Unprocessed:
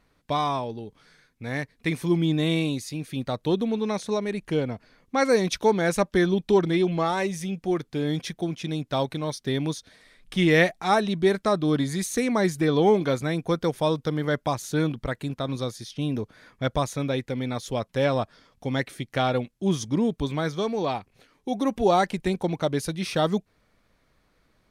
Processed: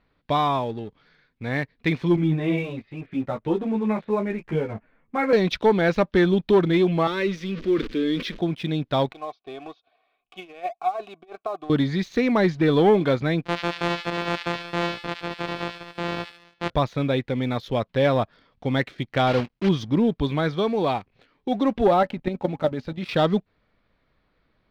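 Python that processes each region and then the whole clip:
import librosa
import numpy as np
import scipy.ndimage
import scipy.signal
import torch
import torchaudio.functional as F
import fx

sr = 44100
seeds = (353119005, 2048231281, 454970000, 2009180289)

y = fx.chain(x, sr, fx.lowpass(hz=2500.0, slope=24),
    fx.doubler(ms=18.0, db=-9.0),
    fx.ensemble(), at=(2.16, 5.33))
y = fx.chain(y, sr, fx.zero_step(step_db=-36.0),
    fx.fixed_phaser(hz=320.0, stages=4),
    fx.sustainer(db_per_s=110.0), at=(7.07, 8.39))
y = fx.chain(y, sr, fx.comb(ms=2.7, depth=0.49),
    fx.over_compress(threshold_db=-22.0, ratio=-0.5),
    fx.vowel_filter(vowel='a'), at=(9.12, 11.7))
y = fx.chain(y, sr, fx.sample_sort(block=256),
    fx.highpass(hz=440.0, slope=6),
    fx.echo_wet_highpass(ms=72, feedback_pct=46, hz=2100.0, wet_db=-4), at=(13.45, 16.7))
y = fx.chain(y, sr, fx.block_float(bits=3),
    fx.notch(hz=3600.0, q=18.0), at=(19.27, 19.7))
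y = fx.chain(y, sr, fx.high_shelf(hz=4700.0, db=-9.0),
    fx.level_steps(step_db=11),
    fx.small_body(hz=(250.0, 570.0, 830.0, 1300.0), ring_ms=80, db=8), at=(21.87, 23.09))
y = scipy.signal.sosfilt(scipy.signal.cheby2(4, 50, 9500.0, 'lowpass', fs=sr, output='sos'), y)
y = fx.leveller(y, sr, passes=1)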